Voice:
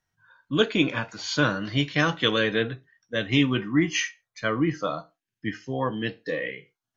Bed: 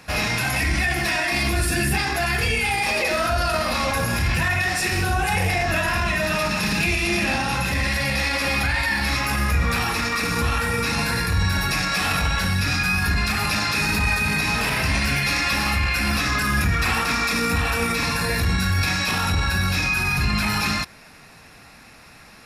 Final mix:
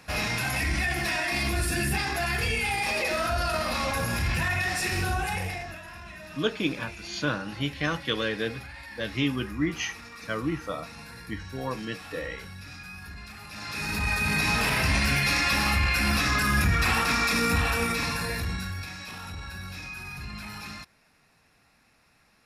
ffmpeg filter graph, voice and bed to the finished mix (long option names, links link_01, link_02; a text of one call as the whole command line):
ffmpeg -i stem1.wav -i stem2.wav -filter_complex "[0:a]adelay=5850,volume=-5.5dB[link_01];[1:a]volume=13dB,afade=type=out:start_time=5.09:duration=0.69:silence=0.16788,afade=type=in:start_time=13.5:duration=0.96:silence=0.11885,afade=type=out:start_time=17.55:duration=1.34:silence=0.188365[link_02];[link_01][link_02]amix=inputs=2:normalize=0" out.wav